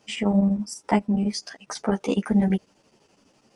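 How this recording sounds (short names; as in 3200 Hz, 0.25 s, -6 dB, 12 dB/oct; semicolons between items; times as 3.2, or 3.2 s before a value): chopped level 12 Hz, depth 65%, duty 75%; a shimmering, thickened sound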